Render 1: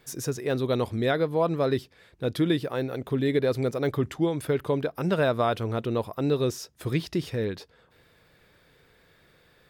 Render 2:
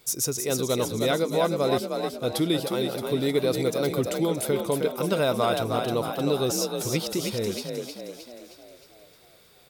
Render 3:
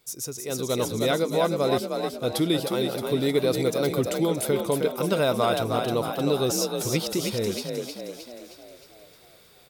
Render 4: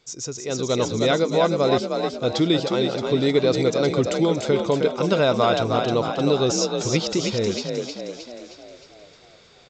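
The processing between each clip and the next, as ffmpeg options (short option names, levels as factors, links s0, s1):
-filter_complex "[0:a]bass=f=250:g=-3,treble=f=4000:g=12,bandreject=f=1700:w=5.2,asplit=8[s0][s1][s2][s3][s4][s5][s6][s7];[s1]adelay=311,afreqshift=41,volume=0.562[s8];[s2]adelay=622,afreqshift=82,volume=0.299[s9];[s3]adelay=933,afreqshift=123,volume=0.158[s10];[s4]adelay=1244,afreqshift=164,volume=0.0841[s11];[s5]adelay=1555,afreqshift=205,volume=0.0442[s12];[s6]adelay=1866,afreqshift=246,volume=0.0234[s13];[s7]adelay=2177,afreqshift=287,volume=0.0124[s14];[s0][s8][s9][s10][s11][s12][s13][s14]amix=inputs=8:normalize=0"
-af "dynaudnorm=f=420:g=3:m=2.99,volume=0.422"
-af "aresample=16000,aresample=44100,volume=1.58"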